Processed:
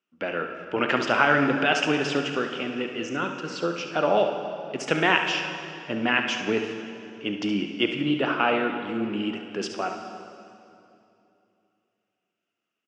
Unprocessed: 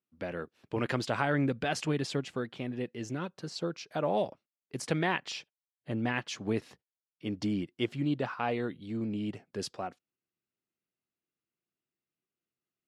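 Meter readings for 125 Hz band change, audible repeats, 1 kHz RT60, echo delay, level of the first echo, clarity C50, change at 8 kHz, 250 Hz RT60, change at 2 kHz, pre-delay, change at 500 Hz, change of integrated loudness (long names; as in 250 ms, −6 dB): −0.5 dB, 1, 2.6 s, 70 ms, −9.5 dB, 4.5 dB, +4.0 dB, 3.1 s, +13.0 dB, 19 ms, +8.5 dB, +8.5 dB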